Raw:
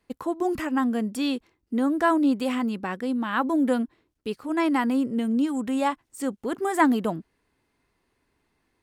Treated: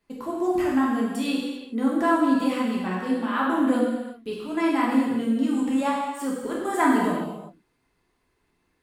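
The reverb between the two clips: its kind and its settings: non-linear reverb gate 0.42 s falling, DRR -5 dB; gain -5 dB

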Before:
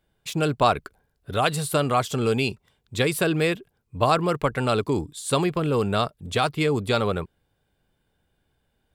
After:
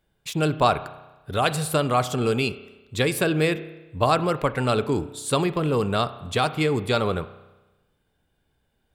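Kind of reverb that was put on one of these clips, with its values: spring tank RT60 1.1 s, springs 32 ms, chirp 60 ms, DRR 13 dB

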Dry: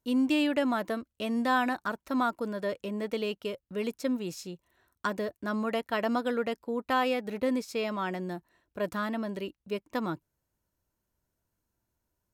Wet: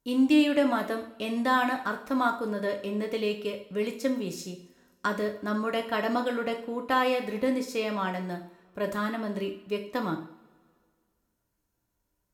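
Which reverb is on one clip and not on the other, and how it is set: two-slope reverb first 0.48 s, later 2 s, from -22 dB, DRR 3.5 dB; gain +1 dB

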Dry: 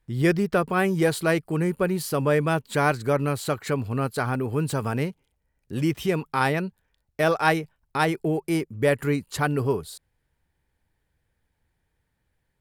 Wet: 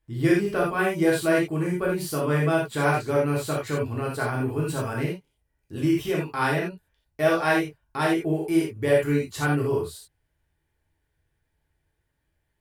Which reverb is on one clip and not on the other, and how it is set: non-linear reverb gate 0.11 s flat, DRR -4.5 dB; gain -6.5 dB

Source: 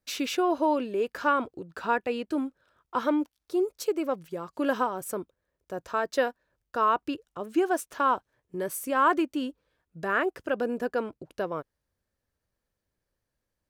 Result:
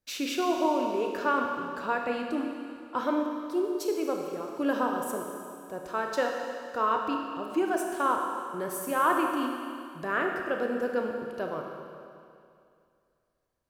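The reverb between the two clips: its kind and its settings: Schroeder reverb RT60 2.4 s, combs from 25 ms, DRR 1.5 dB; gain -3 dB

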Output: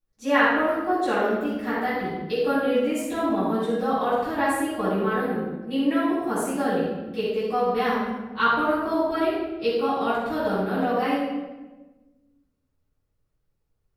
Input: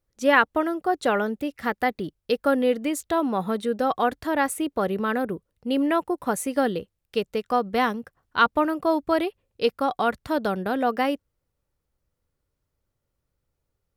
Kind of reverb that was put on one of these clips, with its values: shoebox room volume 700 m³, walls mixed, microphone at 9.2 m; gain -16 dB

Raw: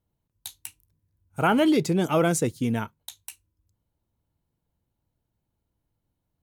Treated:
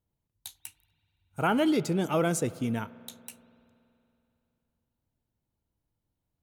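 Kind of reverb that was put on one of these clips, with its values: spring tank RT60 2.9 s, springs 47 ms, chirp 60 ms, DRR 17.5 dB; gain -4.5 dB

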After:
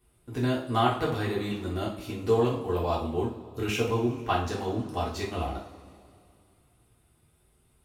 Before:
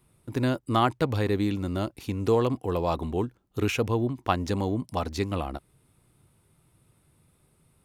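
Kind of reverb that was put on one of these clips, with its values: two-slope reverb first 0.42 s, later 2.5 s, from -19 dB, DRR -6 dB; gain -7.5 dB

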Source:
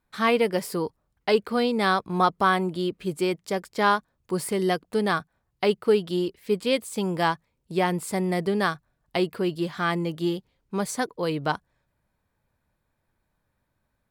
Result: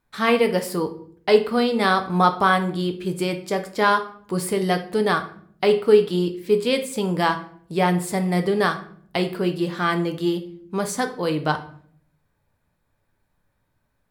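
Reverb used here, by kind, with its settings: shoebox room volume 72 m³, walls mixed, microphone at 0.36 m; gain +2.5 dB

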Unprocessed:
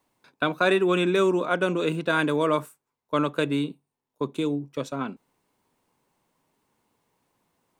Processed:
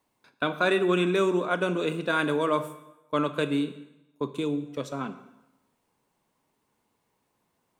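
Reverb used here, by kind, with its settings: plate-style reverb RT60 0.95 s, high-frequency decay 0.9×, DRR 10 dB; gain -2.5 dB

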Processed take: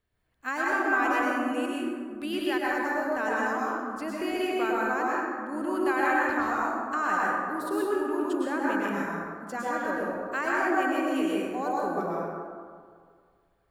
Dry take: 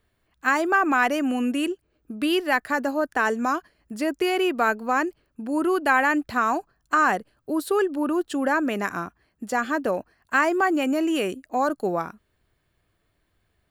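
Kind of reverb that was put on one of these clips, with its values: plate-style reverb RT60 2 s, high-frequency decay 0.4×, pre-delay 95 ms, DRR -5.5 dB; gain -11 dB

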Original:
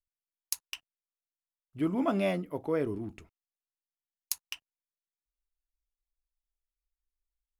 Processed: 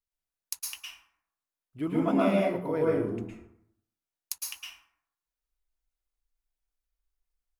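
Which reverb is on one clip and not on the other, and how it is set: plate-style reverb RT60 0.73 s, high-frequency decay 0.5×, pre-delay 0.1 s, DRR -4.5 dB; gain -2.5 dB

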